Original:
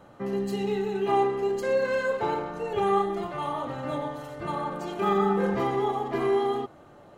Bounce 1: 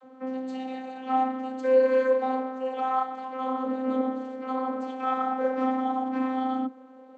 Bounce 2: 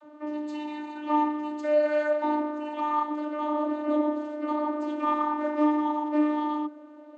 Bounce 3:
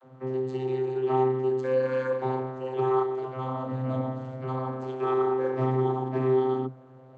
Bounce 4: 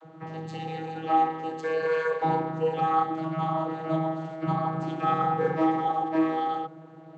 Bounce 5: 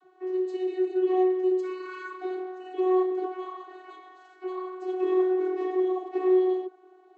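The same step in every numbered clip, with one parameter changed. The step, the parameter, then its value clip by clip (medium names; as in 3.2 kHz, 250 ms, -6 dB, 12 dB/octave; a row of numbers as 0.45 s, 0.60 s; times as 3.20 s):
vocoder, frequency: 260 Hz, 300 Hz, 130 Hz, 160 Hz, 370 Hz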